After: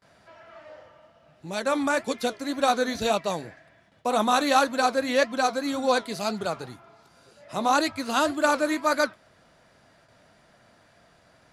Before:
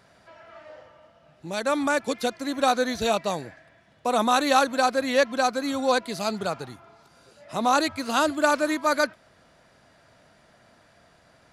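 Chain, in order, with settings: gate with hold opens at -49 dBFS; flange 1.9 Hz, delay 4.8 ms, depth 6.4 ms, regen -70%; gain +3.5 dB

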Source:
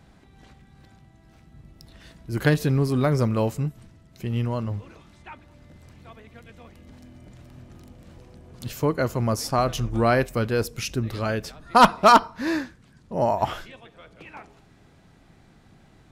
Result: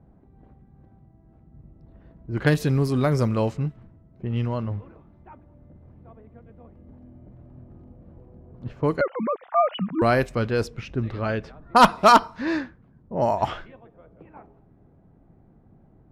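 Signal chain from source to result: 9.01–10.02 sine-wave speech; low-pass opened by the level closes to 640 Hz, open at -16.5 dBFS

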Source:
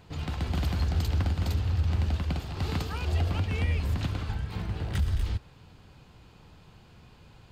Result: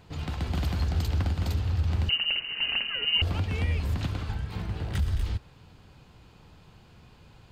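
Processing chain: 2.09–3.22 inverted band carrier 2900 Hz

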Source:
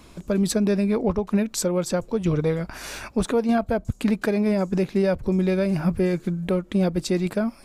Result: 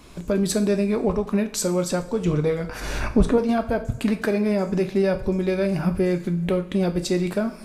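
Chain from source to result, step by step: recorder AGC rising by 16 dB/s; 2.8–3.38 tilt -2.5 dB/oct; two-slope reverb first 0.41 s, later 2.1 s, from -19 dB, DRR 6.5 dB

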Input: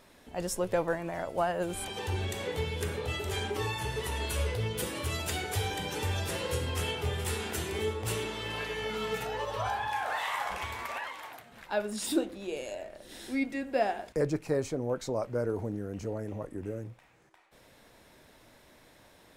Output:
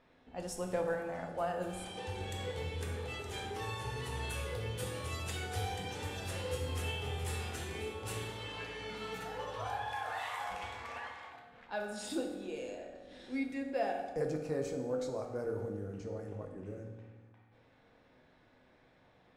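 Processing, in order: low-pass opened by the level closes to 2800 Hz, open at -28 dBFS; on a send: reverb RT60 1.3 s, pre-delay 3 ms, DRR 2 dB; on the sum: gain -8.5 dB

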